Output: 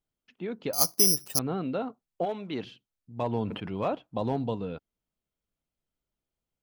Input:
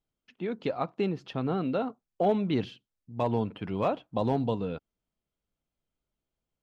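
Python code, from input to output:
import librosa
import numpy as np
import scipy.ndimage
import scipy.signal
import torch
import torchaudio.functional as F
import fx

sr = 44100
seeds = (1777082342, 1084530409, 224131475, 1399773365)

y = fx.resample_bad(x, sr, factor=8, down='filtered', up='zero_stuff', at=(0.73, 1.39))
y = fx.highpass(y, sr, hz=fx.line((2.24, 970.0), (2.65, 270.0)), slope=6, at=(2.24, 2.65), fade=0.02)
y = fx.sustainer(y, sr, db_per_s=62.0, at=(3.32, 3.95))
y = F.gain(torch.from_numpy(y), -2.0).numpy()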